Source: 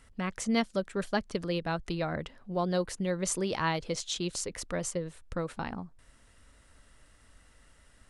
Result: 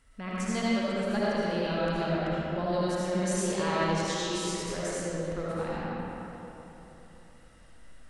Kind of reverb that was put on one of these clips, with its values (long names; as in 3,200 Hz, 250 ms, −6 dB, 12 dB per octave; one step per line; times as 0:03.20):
comb and all-pass reverb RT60 3.5 s, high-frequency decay 0.6×, pre-delay 35 ms, DRR −9 dB
level −6.5 dB